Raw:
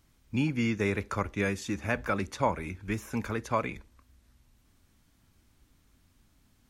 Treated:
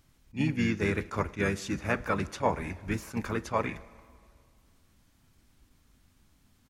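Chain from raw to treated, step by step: harmony voices -5 st -15 dB, -4 st -7 dB; plate-style reverb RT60 2.1 s, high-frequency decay 0.9×, DRR 18.5 dB; attacks held to a fixed rise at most 330 dB/s

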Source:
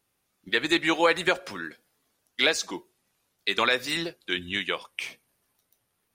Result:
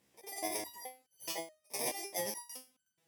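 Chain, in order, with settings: bit-reversed sample order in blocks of 64 samples; bass shelf 120 Hz +4 dB; reverse; compression, threshold -32 dBFS, peak gain reduction 15 dB; reverse; high-pass 41 Hz; distance through air 72 m; on a send: reverse echo 186 ms -20.5 dB; on the sum: speed mistake 7.5 ips tape played at 15 ips; resonator arpeggio 4.7 Hz 68–1500 Hz; trim +15.5 dB

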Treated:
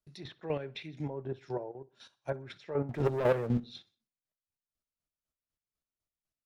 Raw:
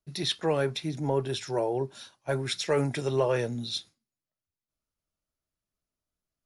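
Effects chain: low-pass that closes with the level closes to 1.1 kHz, closed at -26 dBFS; 0.46–1.10 s: resonant high shelf 1.7 kHz +12 dB, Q 1.5; 1.71–2.16 s: compression 5:1, threshold -40 dBFS, peak gain reduction 13 dB; 2.89–3.60 s: waveshaping leveller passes 3; square tremolo 4 Hz, depth 65%, duty 30%; feedback delay 62 ms, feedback 43%, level -22 dB; trim -4 dB

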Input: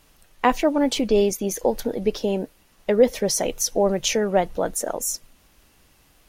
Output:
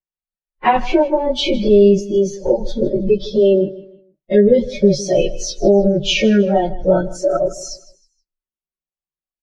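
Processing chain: spectral noise reduction 24 dB; Bessel low-pass 2.9 kHz, order 4; expander -46 dBFS; dynamic bell 140 Hz, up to +5 dB, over -49 dBFS, Q 4.5; comb 5.4 ms, depth 90%; in parallel at -0.5 dB: compression 16:1, threshold -25 dBFS, peak gain reduction 17.5 dB; on the sum: peak limiter -10.5 dBFS, peak gain reduction 8.5 dB; plain phase-vocoder stretch 1.5×; on a send: feedback delay 157 ms, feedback 31%, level -18 dB; on the sum: trim +8 dB

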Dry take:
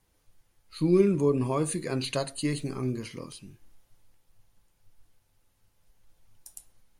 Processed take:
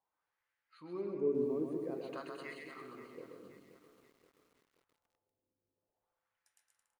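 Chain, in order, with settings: wah-wah 0.5 Hz 310–1900 Hz, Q 2.8; bouncing-ball echo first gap 130 ms, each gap 0.7×, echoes 5; bit-crushed delay 527 ms, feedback 55%, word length 9-bit, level -13 dB; trim -6 dB

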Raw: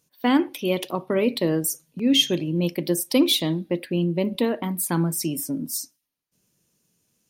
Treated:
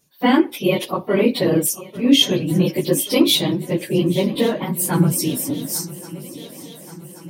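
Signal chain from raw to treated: phase randomisation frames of 50 ms; shuffle delay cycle 1128 ms, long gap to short 3:1, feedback 58%, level -18 dB; trim +5 dB

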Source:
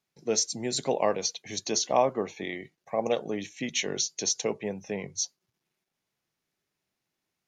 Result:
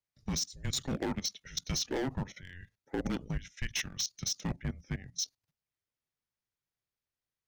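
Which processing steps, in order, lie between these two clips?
hard clipper -24.5 dBFS, distortion -8 dB; level held to a coarse grid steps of 16 dB; frequency shift -270 Hz

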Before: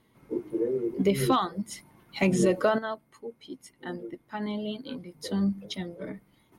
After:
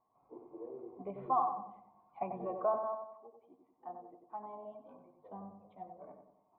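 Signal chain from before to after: cascade formant filter a; filtered feedback delay 93 ms, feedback 50%, low-pass 1.3 kHz, level -5 dB; trim +3.5 dB

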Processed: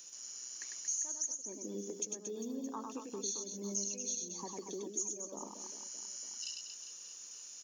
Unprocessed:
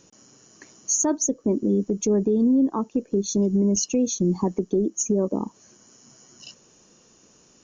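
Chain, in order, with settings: differentiator; compression 4:1, threshold -48 dBFS, peak gain reduction 22.5 dB; on a send: reverse bouncing-ball echo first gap 100 ms, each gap 1.3×, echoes 5; on the sum: trim +8 dB

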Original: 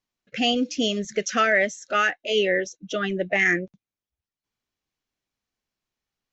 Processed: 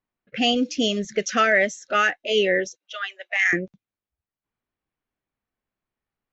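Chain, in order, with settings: level-controlled noise filter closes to 2 kHz, open at -19 dBFS; 2.76–3.53 s: Bessel high-pass 1.2 kHz, order 6; trim +1.5 dB

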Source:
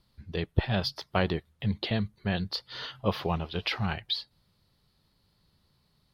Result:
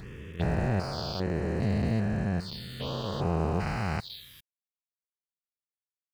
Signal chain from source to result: spectrogram pixelated in time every 400 ms; crossover distortion -52.5 dBFS; touch-sensitive phaser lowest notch 400 Hz, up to 3.4 kHz, full sweep at -34 dBFS; trim +8 dB

